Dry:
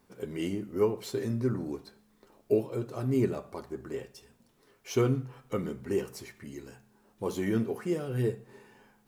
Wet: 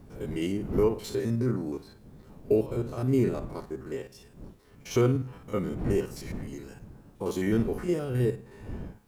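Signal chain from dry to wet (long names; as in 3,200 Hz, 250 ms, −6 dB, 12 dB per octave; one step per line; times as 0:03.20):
spectrum averaged block by block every 50 ms
wind on the microphone 200 Hz −44 dBFS
level +3.5 dB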